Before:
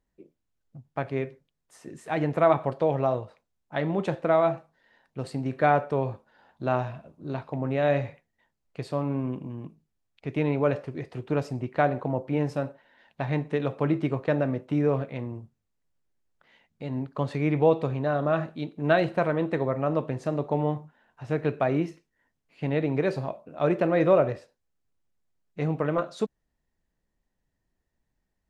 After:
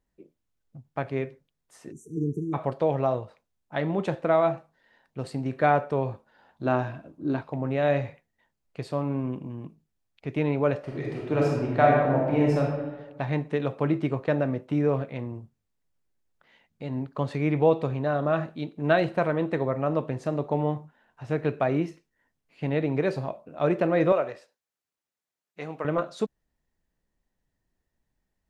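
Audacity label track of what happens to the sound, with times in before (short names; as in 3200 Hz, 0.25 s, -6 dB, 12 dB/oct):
1.920000	2.540000	spectral delete 470–5600 Hz
6.640000	7.400000	small resonant body resonances 300/1600 Hz, height 11 dB -> 13 dB
10.790000	12.600000	reverb throw, RT60 1.3 s, DRR -3 dB
24.120000	25.850000	HPF 790 Hz 6 dB/oct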